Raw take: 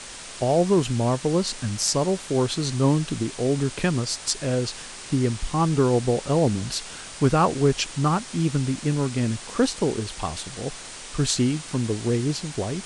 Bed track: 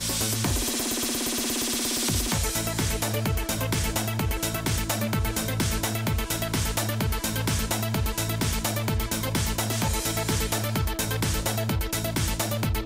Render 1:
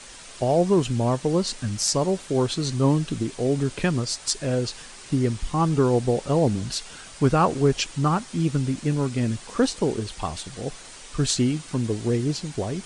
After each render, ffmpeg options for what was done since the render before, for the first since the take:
-af "afftdn=nr=6:nf=-39"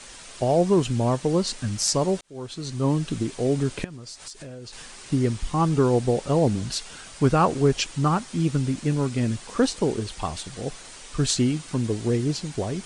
-filter_complex "[0:a]asettb=1/sr,asplit=3[a][b][c];[a]atrim=end=3.844[d];[b]atrim=start=3.84:end=4.73,asetpts=PTS-STARTPTS,afade=t=in:d=0.004:c=qsin,afade=t=out:st=0.886:d=0.004:c=qsin,acompressor=threshold=-36dB:ratio=8:attack=3.2:release=140:knee=1:detection=peak[e];[c]atrim=start=4.726[f];[d][e]acrossfade=d=0.004:c1=hsin:c2=qsin[g];[g][f]acrossfade=d=0.004:c1=qsin:c2=hsin,asplit=2[h][i];[h]atrim=end=2.21,asetpts=PTS-STARTPTS,afade=t=out:st=2.206:d=0.004:c=hsin[j];[i]atrim=start=2.21,asetpts=PTS-STARTPTS,afade=t=in:d=0.92[k];[j][k]concat=n=2:v=0:a=1"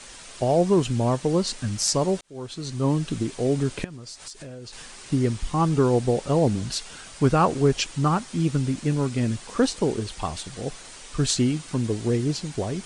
-af anull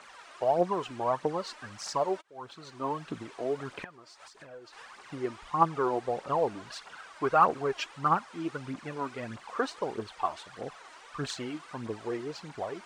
-af "bandpass=f=1.1k:t=q:w=1.3:csg=0,aphaser=in_gain=1:out_gain=1:delay=3.4:decay=0.54:speed=1.6:type=triangular"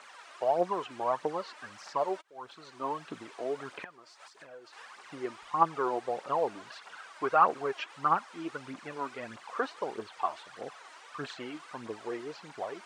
-filter_complex "[0:a]acrossover=split=3300[a][b];[b]acompressor=threshold=-54dB:ratio=4:attack=1:release=60[c];[a][c]amix=inputs=2:normalize=0,highpass=f=400:p=1"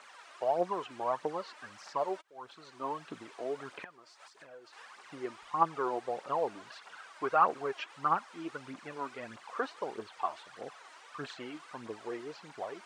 -af "volume=-2.5dB"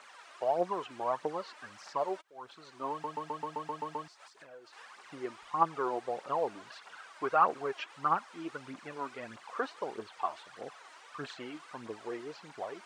-filter_complex "[0:a]asplit=10[a][b][c][d][e][f][g][h][i][j];[a]atrim=end=3.042[k];[b]atrim=start=2.908:end=3.042[l];[c]atrim=start=2.908:end=3.042[m];[d]atrim=start=2.908:end=3.042[n];[e]atrim=start=2.908:end=3.042[o];[f]atrim=start=2.908:end=3.042[p];[g]atrim=start=2.908:end=3.042[q];[h]atrim=start=2.908:end=3.042[r];[i]atrim=start=2.908:end=3.042[s];[j]atrim=start=4.078[t];[k][l]acrossfade=d=0.004:c1=hsin:c2=hsin[u];[u][m]acrossfade=d=0.004:c1=hsin:c2=hsin[v];[v][n]acrossfade=d=0.004:c1=hsin:c2=hsin[w];[w][o]acrossfade=d=0.004:c1=hsin:c2=hsin[x];[x][p]acrossfade=d=0.004:c1=hsin:c2=hsin[y];[y][q]acrossfade=d=0.004:c1=hsin:c2=hsin[z];[z][r]acrossfade=d=0.004:c1=hsin:c2=hsin[aa];[aa][s]acrossfade=d=0.004:c1=hsin:c2=hsin[ab];[ab][t]acrossfade=d=0.004:c1=hsin:c2=hsin"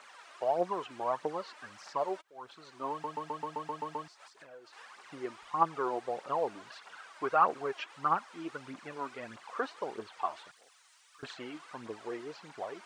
-filter_complex "[0:a]asettb=1/sr,asplit=3[a][b][c];[a]atrim=end=10.514[d];[b]atrim=start=10.51:end=11.23,asetpts=PTS-STARTPTS,afade=t=in:d=0.004:c=qsin,afade=t=out:st=0.716:d=0.004:c=qsin,aderivative[e];[c]atrim=start=11.226[f];[d][e]acrossfade=d=0.004:c1=hsin:c2=qsin[g];[g][f]acrossfade=d=0.004:c1=qsin:c2=hsin"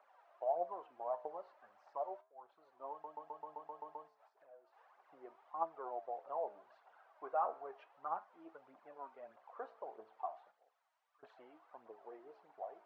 -af "bandpass=f=690:t=q:w=3:csg=0,flanger=delay=9.1:depth=9.2:regen=76:speed=0.35:shape=sinusoidal"

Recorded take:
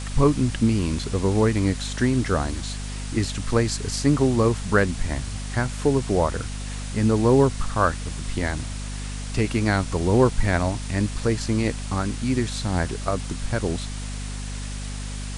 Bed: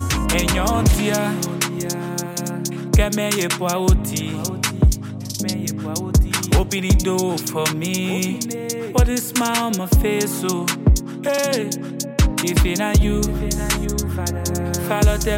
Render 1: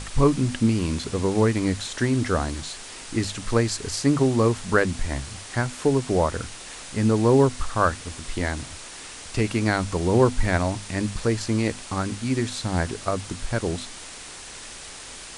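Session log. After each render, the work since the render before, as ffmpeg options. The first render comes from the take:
-af "bandreject=f=50:t=h:w=6,bandreject=f=100:t=h:w=6,bandreject=f=150:t=h:w=6,bandreject=f=200:t=h:w=6,bandreject=f=250:t=h:w=6"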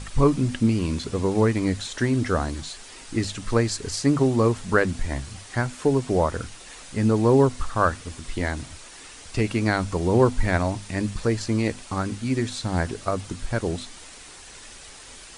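-af "afftdn=nr=6:nf=-40"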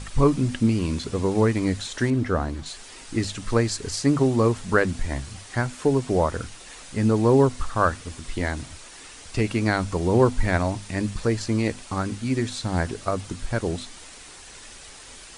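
-filter_complex "[0:a]asettb=1/sr,asplit=3[a][b][c];[a]atrim=end=2.104[d];[b]atrim=start=2.1:end=2.66,asetpts=PTS-STARTPTS,afade=t=in:d=0.004:c=qsin,afade=t=out:st=0.556:d=0.004:c=qsin,highshelf=f=3.3k:g=-11.5[e];[c]atrim=start=2.656[f];[d][e]acrossfade=d=0.004:c1=hsin:c2=qsin[g];[g][f]acrossfade=d=0.004:c1=qsin:c2=hsin"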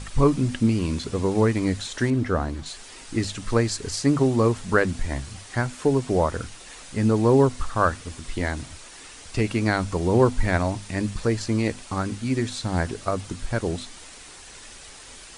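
-af anull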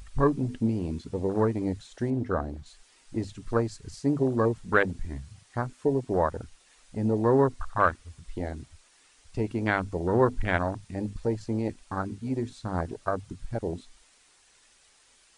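-af "afwtdn=0.0631,lowshelf=f=470:g=-7"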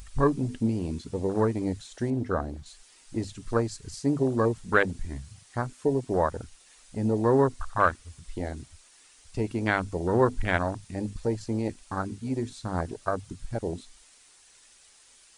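-af "highshelf=f=4.6k:g=7.5"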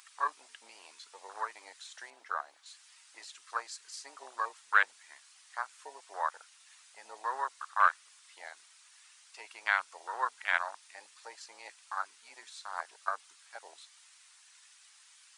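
-af "highpass=f=970:w=0.5412,highpass=f=970:w=1.3066,highshelf=f=6.6k:g=-6.5"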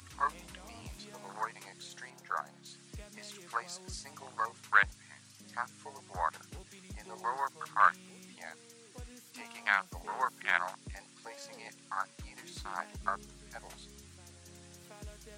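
-filter_complex "[1:a]volume=-33dB[a];[0:a][a]amix=inputs=2:normalize=0"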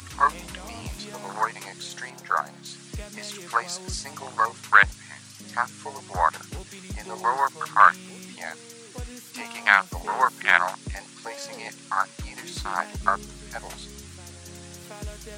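-af "volume=11.5dB,alimiter=limit=-1dB:level=0:latency=1"

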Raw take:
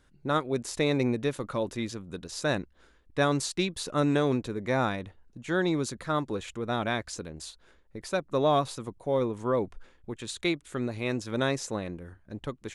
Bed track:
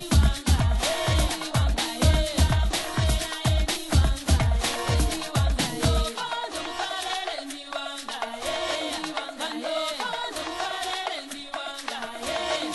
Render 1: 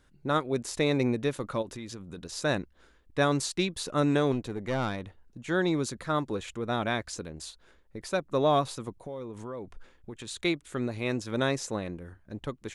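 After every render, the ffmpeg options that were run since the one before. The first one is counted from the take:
-filter_complex "[0:a]asplit=3[a][b][c];[a]afade=t=out:st=1.61:d=0.02[d];[b]acompressor=threshold=-36dB:ratio=5:attack=3.2:release=140:knee=1:detection=peak,afade=t=in:st=1.61:d=0.02,afade=t=out:st=2.16:d=0.02[e];[c]afade=t=in:st=2.16:d=0.02[f];[d][e][f]amix=inputs=3:normalize=0,asettb=1/sr,asplit=3[g][h][i];[g]atrim=end=4.324[j];[h]atrim=start=4.32:end=5.05,asetpts=PTS-STARTPTS,afade=t=in:d=0.004:c=qsin,afade=t=out:st=0.726:d=0.004:c=qsin,aeval=exprs='(tanh(14.1*val(0)+0.4)-tanh(0.4))/14.1':c=same[k];[i]atrim=start=5.046[l];[j][k]acrossfade=d=0.004:c1=hsin:c2=qsin[m];[m][l]acrossfade=d=0.004:c1=qsin:c2=hsin,asettb=1/sr,asplit=3[n][o][p];[n]atrim=end=8.984[q];[o]atrim=start=8.98:end=10.31,asetpts=PTS-STARTPTS,afade=t=in:d=0.004:c=qsin,afade=t=out:st=1.326:d=0.004:c=qsin,acompressor=threshold=-36dB:ratio=5:attack=3.2:release=140:knee=1:detection=peak[r];[p]atrim=start=10.306[s];[q][r]acrossfade=d=0.004:c1=hsin:c2=qsin[t];[t][s]acrossfade=d=0.004:c1=qsin:c2=hsin"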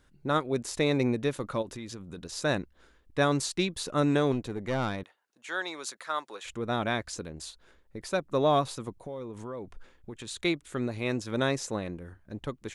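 -filter_complex "[0:a]asettb=1/sr,asplit=3[a][b][c];[a]atrim=end=5.034[d];[b]atrim=start=5.03:end=6.45,asetpts=PTS-STARTPTS,afade=t=in:d=0.004:c=qsin,afade=t=out:st=1.416:d=0.004:c=qsin,highpass=810[e];[c]atrim=start=6.446[f];[d][e]acrossfade=d=0.004:c1=hsin:c2=qsin[g];[g][f]acrossfade=d=0.004:c1=qsin:c2=hsin"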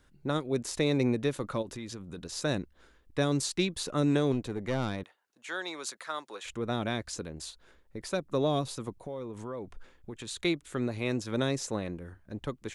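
-filter_complex "[0:a]acrossover=split=500|3000[a][b][c];[b]acompressor=threshold=-34dB:ratio=6[d];[a][d][c]amix=inputs=3:normalize=0"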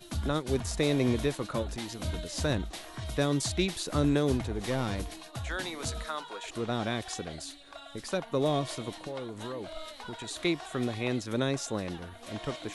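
-filter_complex "[1:a]volume=-15dB[a];[0:a][a]amix=inputs=2:normalize=0"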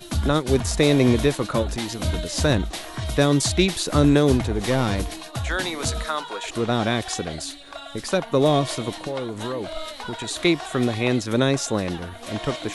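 -af "volume=9.5dB"

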